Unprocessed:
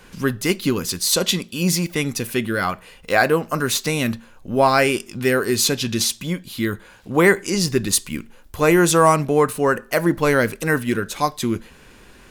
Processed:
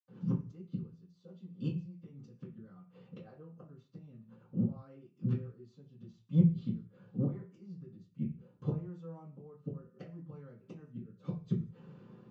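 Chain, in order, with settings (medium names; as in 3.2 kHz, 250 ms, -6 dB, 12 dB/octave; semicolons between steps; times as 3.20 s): high-pass 200 Hz 12 dB/octave; inverted gate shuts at -16 dBFS, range -28 dB; rotary cabinet horn 8 Hz, later 0.7 Hz, at 5.05 s; reverberation RT60 0.30 s, pre-delay 77 ms, DRR -60 dB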